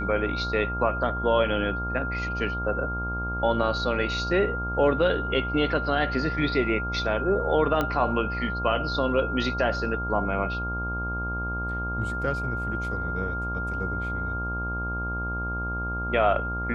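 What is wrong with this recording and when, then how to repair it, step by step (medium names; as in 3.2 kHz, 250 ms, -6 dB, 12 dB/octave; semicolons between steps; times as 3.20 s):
buzz 60 Hz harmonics 21 -32 dBFS
whine 1.4 kHz -30 dBFS
7.81 s: pop -13 dBFS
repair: de-click; de-hum 60 Hz, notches 21; band-stop 1.4 kHz, Q 30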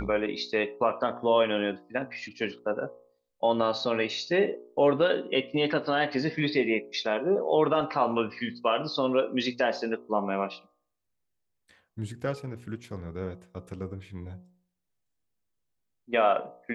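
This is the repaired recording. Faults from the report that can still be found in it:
nothing left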